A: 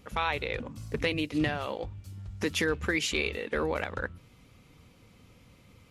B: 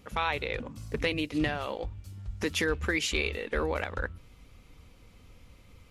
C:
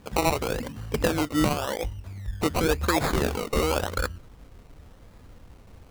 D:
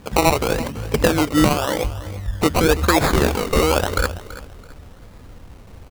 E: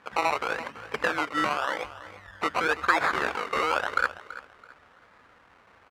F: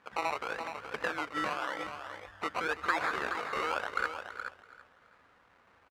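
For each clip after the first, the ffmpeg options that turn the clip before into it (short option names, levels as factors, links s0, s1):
-af "asubboost=boost=6:cutoff=55"
-af "acrusher=samples=21:mix=1:aa=0.000001:lfo=1:lforange=12.6:lforate=0.92,volume=1.88"
-af "aecho=1:1:332|664|996:0.168|0.047|0.0132,volume=2.37"
-af "asoftclip=type=hard:threshold=0.422,bandpass=f=1500:t=q:w=1.5:csg=0"
-af "aecho=1:1:423:0.398,volume=0.422"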